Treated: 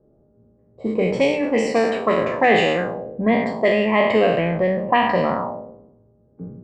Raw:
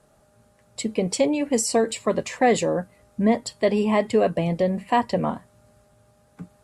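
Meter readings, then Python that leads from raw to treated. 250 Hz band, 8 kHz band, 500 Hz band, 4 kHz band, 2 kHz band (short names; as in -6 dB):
+1.5 dB, under -10 dB, +4.0 dB, +4.0 dB, +9.5 dB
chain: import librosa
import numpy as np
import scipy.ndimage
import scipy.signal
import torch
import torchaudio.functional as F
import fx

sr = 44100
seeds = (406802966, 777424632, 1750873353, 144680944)

y = fx.spec_trails(x, sr, decay_s=1.14)
y = fx.hum_notches(y, sr, base_hz=50, count=6)
y = fx.envelope_lowpass(y, sr, base_hz=370.0, top_hz=2700.0, q=2.3, full_db=-14.5, direction='up')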